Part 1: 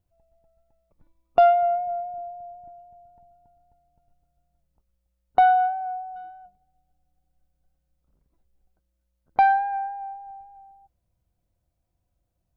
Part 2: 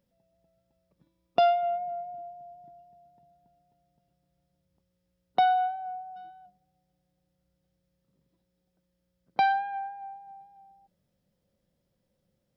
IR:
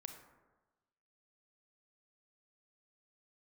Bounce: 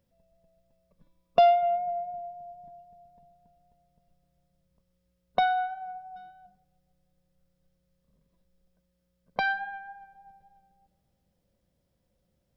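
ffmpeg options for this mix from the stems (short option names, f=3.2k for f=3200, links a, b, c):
-filter_complex "[0:a]volume=-6dB,asplit=2[a][b];[b]volume=-7.5dB[c];[1:a]volume=0dB[d];[2:a]atrim=start_sample=2205[e];[c][e]afir=irnorm=-1:irlink=0[f];[a][d][f]amix=inputs=3:normalize=0"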